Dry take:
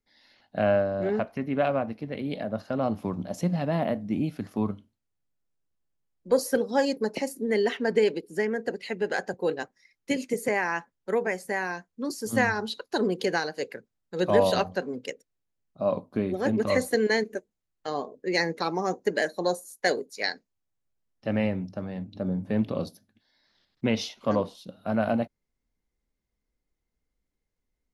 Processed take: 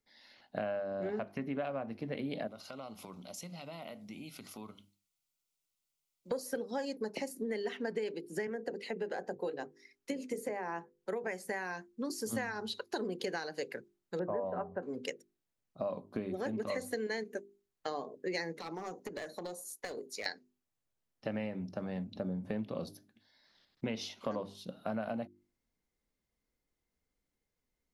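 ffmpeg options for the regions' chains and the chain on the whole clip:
ffmpeg -i in.wav -filter_complex "[0:a]asettb=1/sr,asplit=3[link_01][link_02][link_03];[link_01]atrim=end=2.474[link_04];[link_02]atrim=start=2.47:end=6.31,asetpts=PTS-STARTPTS,afade=type=in:duration=0.004:curve=qsin,afade=type=out:start_time=3.836:duration=0.004:curve=qsin,tiltshelf=frequency=1400:gain=-9,acompressor=threshold=-45dB:ratio=3:attack=3.2:release=140:knee=1:detection=peak,asuperstop=centerf=1700:order=4:qfactor=4.3[link_05];[link_03]atrim=start=6.306[link_06];[link_04][link_05]acrossfade=duration=0.004:curve1=hsin:curve2=qsin[link_07];[link_07][link_06]acrossfade=duration=0.004:curve1=qsin:curve2=hsin,asettb=1/sr,asplit=3[link_08][link_09][link_10];[link_08]atrim=end=8.474[link_11];[link_09]atrim=start=8.47:end=11.24,asetpts=PTS-STARTPTS,afade=type=in:duration=0.004:curve=qsin,afade=type=out:start_time=2.766:duration=0.004:curve=qsin,bandreject=frequency=50:width_type=h:width=6,bandreject=frequency=100:width_type=h:width=6,bandreject=frequency=150:width_type=h:width=6,bandreject=frequency=200:width_type=h:width=6,bandreject=frequency=250:width_type=h:width=6,bandreject=frequency=300:width_type=h:width=6,bandreject=frequency=350:width_type=h:width=6,bandreject=frequency=400:width_type=h:width=6,bandreject=frequency=450:width_type=h:width=6,bandreject=frequency=500:width_type=h:width=6,acrossover=split=180|960[link_12][link_13][link_14];[link_12]acompressor=threshold=-53dB:ratio=4[link_15];[link_13]acompressor=threshold=-26dB:ratio=4[link_16];[link_14]acompressor=threshold=-44dB:ratio=4[link_17];[link_15][link_16][link_17]amix=inputs=3:normalize=0[link_18];[link_10]atrim=start=11.236[link_19];[link_11][link_18]acrossfade=duration=0.004:curve1=hsin:curve2=qsin[link_20];[link_20][link_19]acrossfade=duration=0.004:curve1=qsin:curve2=hsin,asettb=1/sr,asplit=3[link_21][link_22][link_23];[link_21]atrim=end=14.194[link_24];[link_22]atrim=start=14.19:end=14.83,asetpts=PTS-STARTPTS,afade=type=in:duration=0.004:curve=qsin,afade=type=out:start_time=0.636:duration=0.004:curve=qsin,lowpass=frequency=1400:width=0.5412,lowpass=frequency=1400:width=1.3066,asplit=2[link_25][link_26];[link_26]adelay=12,volume=-12dB[link_27];[link_25][link_27]amix=inputs=2:normalize=0,atrim=end_sample=28224[link_28];[link_23]atrim=start=14.826[link_29];[link_24][link_28]acrossfade=duration=0.004:curve1=hsin:curve2=qsin[link_30];[link_30][link_29]acrossfade=duration=0.004:curve1=qsin:curve2=hsin,asettb=1/sr,asplit=3[link_31][link_32][link_33];[link_31]atrim=end=18.594[link_34];[link_32]atrim=start=18.59:end=20.26,asetpts=PTS-STARTPTS,afade=type=in:duration=0.004:curve=qsin,afade=type=out:start_time=1.666:duration=0.004:curve=qsin,aeval=exprs='clip(val(0),-1,0.0562)':channel_layout=same,bandreject=frequency=1600:width=14,acompressor=threshold=-36dB:ratio=16:attack=3.2:release=140:knee=1:detection=peak[link_35];[link_33]atrim=start=20.256[link_36];[link_34][link_35]acrossfade=duration=0.004:curve1=hsin:curve2=qsin[link_37];[link_37][link_36]acrossfade=duration=0.004:curve1=qsin:curve2=hsin,lowshelf=frequency=63:gain=-9,bandreject=frequency=50:width_type=h:width=6,bandreject=frequency=100:width_type=h:width=6,bandreject=frequency=150:width_type=h:width=6,bandreject=frequency=200:width_type=h:width=6,bandreject=frequency=250:width_type=h:width=6,bandreject=frequency=300:width_type=h:width=6,bandreject=frequency=350:width_type=h:width=6,bandreject=frequency=400:width_type=h:width=6,acompressor=threshold=-34dB:ratio=6" out.wav

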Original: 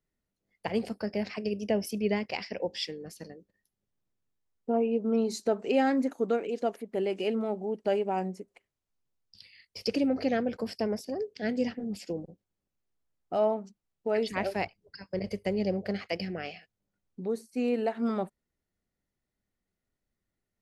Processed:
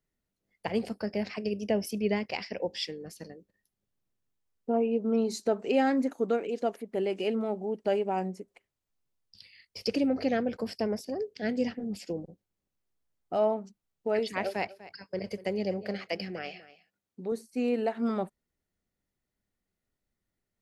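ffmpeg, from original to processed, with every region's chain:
ffmpeg -i in.wav -filter_complex "[0:a]asettb=1/sr,asplit=3[link_01][link_02][link_03];[link_01]atrim=end=14.194[link_04];[link_02]atrim=start=14.19:end=17.32,asetpts=PTS-STARTPTS,afade=type=in:duration=0.004:curve=qsin,afade=type=out:start_time=3.126:duration=0.004:curve=qsin,highpass=frequency=220:poles=1,aecho=1:1:246:0.141,atrim=end_sample=138033[link_05];[link_03]atrim=start=17.316[link_06];[link_04][link_05]acrossfade=duration=0.004:curve1=hsin:curve2=qsin[link_07];[link_07][link_06]acrossfade=duration=0.004:curve1=qsin:curve2=hsin" out.wav

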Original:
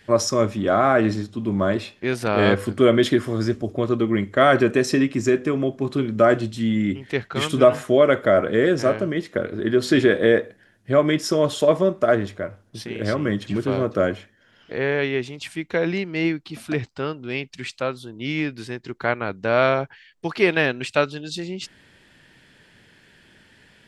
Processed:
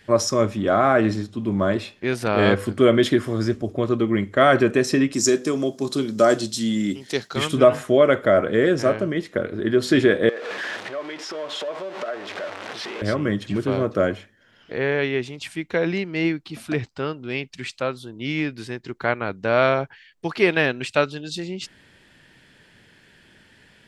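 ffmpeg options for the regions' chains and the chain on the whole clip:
ffmpeg -i in.wav -filter_complex "[0:a]asettb=1/sr,asplit=3[link_01][link_02][link_03];[link_01]atrim=end=5.124[link_04];[link_02]atrim=start=5.12:end=7.36,asetpts=PTS-STARTPTS,afade=type=in:duration=0.004:curve=qsin,afade=type=out:start_time=2.236:duration=0.004:curve=qsin,highpass=170,highshelf=frequency=3500:width_type=q:width=1.5:gain=12.5[link_05];[link_03]atrim=start=7.356[link_06];[link_04][link_05]acrossfade=duration=0.004:curve1=hsin:curve2=qsin[link_07];[link_07][link_06]acrossfade=duration=0.004:curve1=qsin:curve2=hsin,asettb=1/sr,asplit=3[link_08][link_09][link_10];[link_08]atrim=end=10.294[link_11];[link_09]atrim=start=10.29:end=13.02,asetpts=PTS-STARTPTS,afade=type=in:duration=0.004:curve=qsin,afade=type=out:start_time=2.726:duration=0.004:curve=qsin,aeval=exprs='val(0)+0.5*0.0841*sgn(val(0))':channel_layout=same,acompressor=threshold=-24dB:ratio=6:attack=3.2:release=140:knee=1:detection=peak,highpass=490,lowpass=3700[link_12];[link_10]atrim=start=13.016[link_13];[link_11][link_12]acrossfade=duration=0.004:curve1=hsin:curve2=qsin[link_14];[link_14][link_13]acrossfade=duration=0.004:curve1=qsin:curve2=hsin" out.wav

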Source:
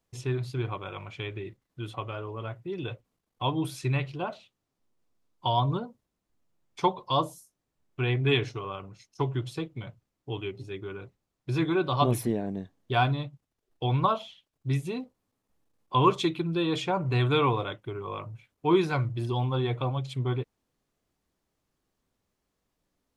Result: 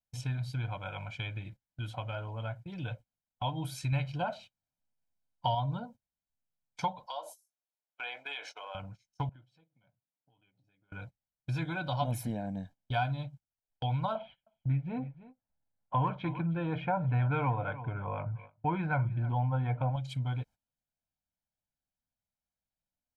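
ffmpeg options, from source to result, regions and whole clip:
ffmpeg -i in.wav -filter_complex "[0:a]asettb=1/sr,asplit=3[link_01][link_02][link_03];[link_01]atrim=end=3.924[link_04];[link_02]atrim=start=3.92:end=5.55,asetpts=PTS-STARTPTS,afade=type=in:duration=0.004:curve=qsin,afade=type=out:start_time=1.626:duration=0.004:curve=qsin,bandreject=frequency=3400:width=15,acontrast=31[link_05];[link_03]atrim=start=5.546[link_06];[link_04][link_05]acrossfade=duration=0.004:curve1=hsin:curve2=qsin[link_07];[link_07][link_06]acrossfade=duration=0.004:curve1=qsin:curve2=hsin,asettb=1/sr,asplit=3[link_08][link_09][link_10];[link_08]atrim=end=7.064[link_11];[link_09]atrim=start=7.06:end=8.75,asetpts=PTS-STARTPTS,afade=type=in:duration=0.004:curve=qsin,afade=type=out:start_time=1.686:duration=0.004:curve=qsin,highpass=frequency=480:width=0.5412,highpass=frequency=480:width=1.3066,acompressor=threshold=-34dB:ratio=4:attack=3.2:release=140:knee=1:detection=peak[link_12];[link_10]atrim=start=8.746[link_13];[link_11][link_12]acrossfade=duration=0.004:curve1=hsin:curve2=qsin[link_14];[link_14][link_13]acrossfade=duration=0.004:curve1=qsin:curve2=hsin,asettb=1/sr,asplit=3[link_15][link_16][link_17];[link_15]atrim=end=9.294[link_18];[link_16]atrim=start=9.29:end=10.92,asetpts=PTS-STARTPTS,afade=type=in:duration=0.004:curve=qsin,afade=type=out:start_time=1.626:duration=0.004:curve=qsin,highshelf=frequency=3600:gain=-9,acompressor=threshold=-46dB:ratio=6:attack=3.2:release=140:knee=1:detection=peak,highpass=180,lowpass=5900[link_19];[link_17]atrim=start=10.916[link_20];[link_18][link_19]acrossfade=duration=0.004:curve1=hsin:curve2=qsin[link_21];[link_21][link_20]acrossfade=duration=0.004:curve1=qsin:curve2=hsin,asettb=1/sr,asplit=3[link_22][link_23][link_24];[link_22]atrim=end=14.154[link_25];[link_23]atrim=start=14.15:end=19.96,asetpts=PTS-STARTPTS,afade=type=in:duration=0.004:curve=qsin,afade=type=out:start_time=5.806:duration=0.004:curve=qsin,lowpass=frequency=2100:width=0.5412,lowpass=frequency=2100:width=1.3066,acontrast=30,aecho=1:1:314:0.106,atrim=end_sample=256221[link_26];[link_24]atrim=start=19.956[link_27];[link_25][link_26]acrossfade=duration=0.004:curve1=hsin:curve2=qsin[link_28];[link_28][link_27]acrossfade=duration=0.004:curve1=qsin:curve2=hsin,agate=range=-17dB:threshold=-46dB:ratio=16:detection=peak,aecho=1:1:1.3:0.97,acompressor=threshold=-30dB:ratio=2,volume=-3.5dB" out.wav

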